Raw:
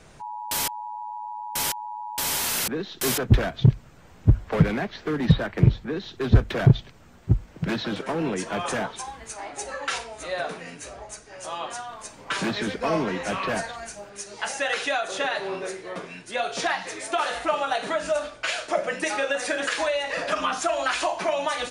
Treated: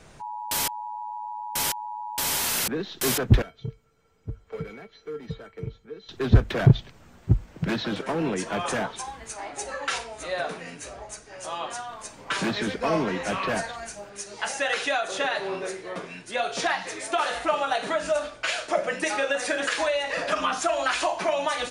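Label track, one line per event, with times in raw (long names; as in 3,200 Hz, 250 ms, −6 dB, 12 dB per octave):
3.420000	6.090000	tuned comb filter 450 Hz, decay 0.15 s, harmonics odd, mix 90%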